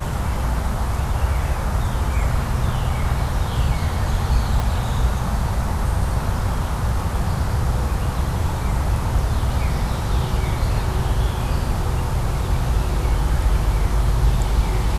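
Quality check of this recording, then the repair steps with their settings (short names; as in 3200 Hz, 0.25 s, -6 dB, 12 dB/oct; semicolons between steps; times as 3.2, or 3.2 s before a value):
4.6 pop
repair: de-click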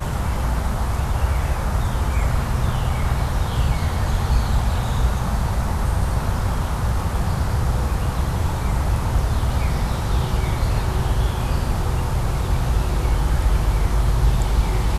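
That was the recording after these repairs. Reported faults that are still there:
4.6 pop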